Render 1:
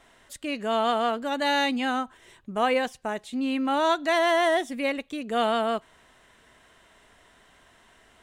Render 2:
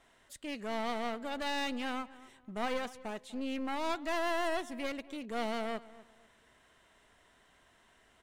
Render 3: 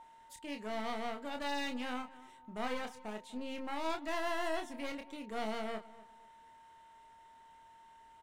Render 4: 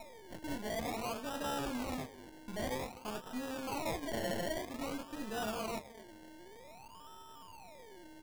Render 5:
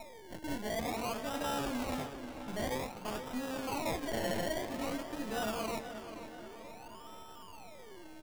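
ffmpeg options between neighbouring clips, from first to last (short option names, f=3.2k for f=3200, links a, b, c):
-filter_complex "[0:a]aeval=exprs='clip(val(0),-1,0.0211)':c=same,asplit=2[a][b];[b]adelay=247,lowpass=f=2.3k:p=1,volume=-18dB,asplit=2[c][d];[d]adelay=247,lowpass=f=2.3k:p=1,volume=0.29,asplit=2[e][f];[f]adelay=247,lowpass=f=2.3k:p=1,volume=0.29[g];[a][c][e][g]amix=inputs=4:normalize=0,volume=-8dB"
-filter_complex "[0:a]aeval=exprs='val(0)+0.00447*sin(2*PI*910*n/s)':c=same,asplit=2[a][b];[b]adelay=28,volume=-6dB[c];[a][c]amix=inputs=2:normalize=0,volume=-4dB"
-af "aeval=exprs='if(lt(val(0),0),0.251*val(0),val(0))':c=same,acrusher=samples=28:mix=1:aa=0.000001:lfo=1:lforange=16.8:lforate=0.52,volume=8.5dB"
-filter_complex "[0:a]asplit=2[a][b];[b]adelay=482,lowpass=f=4.6k:p=1,volume=-10dB,asplit=2[c][d];[d]adelay=482,lowpass=f=4.6k:p=1,volume=0.55,asplit=2[e][f];[f]adelay=482,lowpass=f=4.6k:p=1,volume=0.55,asplit=2[g][h];[h]adelay=482,lowpass=f=4.6k:p=1,volume=0.55,asplit=2[i][j];[j]adelay=482,lowpass=f=4.6k:p=1,volume=0.55,asplit=2[k][l];[l]adelay=482,lowpass=f=4.6k:p=1,volume=0.55[m];[a][c][e][g][i][k][m]amix=inputs=7:normalize=0,volume=2dB"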